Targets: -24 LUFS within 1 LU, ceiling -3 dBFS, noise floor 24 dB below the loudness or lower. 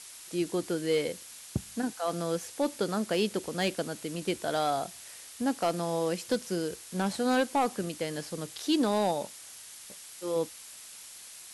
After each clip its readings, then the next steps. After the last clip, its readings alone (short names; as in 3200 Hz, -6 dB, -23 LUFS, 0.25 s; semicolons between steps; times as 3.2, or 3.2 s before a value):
clipped 0.2%; flat tops at -19.0 dBFS; noise floor -48 dBFS; noise floor target -56 dBFS; loudness -31.5 LUFS; peak -19.0 dBFS; loudness target -24.0 LUFS
-> clip repair -19 dBFS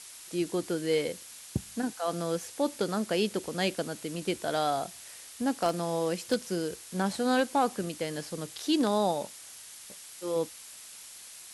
clipped 0.0%; noise floor -48 dBFS; noise floor target -55 dBFS
-> noise print and reduce 7 dB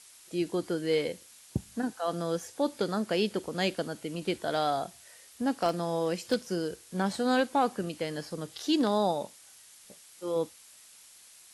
noise floor -55 dBFS; loudness -31.0 LUFS; peak -11.5 dBFS; loudness target -24.0 LUFS
-> gain +7 dB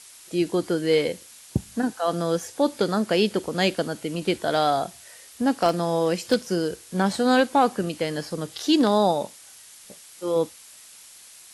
loudness -24.0 LUFS; peak -4.5 dBFS; noise floor -48 dBFS